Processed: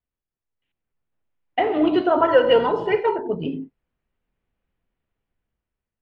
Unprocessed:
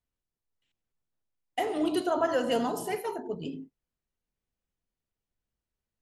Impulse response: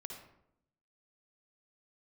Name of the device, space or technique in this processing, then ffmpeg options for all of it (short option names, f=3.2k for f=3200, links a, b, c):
action camera in a waterproof case: -filter_complex "[0:a]asettb=1/sr,asplit=3[a][b][c];[a]atrim=end=2.214[d];[b]atrim=start=2.21:end=3.26,asetpts=PTS-STARTPTS,afade=t=in:d=0.004:c=qsin,afade=t=out:st=1.046:d=0.004:c=qsin,aecho=1:1:2.1:0.68,atrim=end_sample=46305[e];[c]atrim=start=3.256[f];[d][e]acrossfade=d=0.004:c1=hsin:c2=qsin[g];[g][f]acrossfade=d=0.004:c1=qsin:c2=hsin,lowpass=f=2.9k:w=0.5412,lowpass=f=2.9k:w=1.3066,dynaudnorm=f=300:g=7:m=12dB,volume=-1dB" -ar 44100 -c:a aac -b:a 48k